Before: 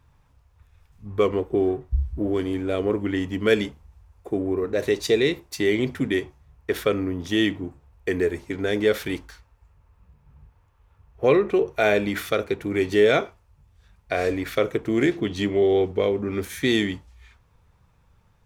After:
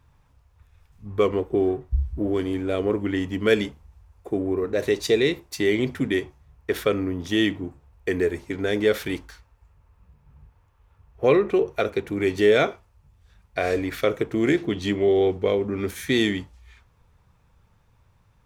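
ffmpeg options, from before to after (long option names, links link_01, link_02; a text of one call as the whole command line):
ffmpeg -i in.wav -filter_complex "[0:a]asplit=2[link_01][link_02];[link_01]atrim=end=11.812[link_03];[link_02]atrim=start=12.348[link_04];[link_03][link_04]acrossfade=duration=0.004:curve1=hsin:curve2=hsin" out.wav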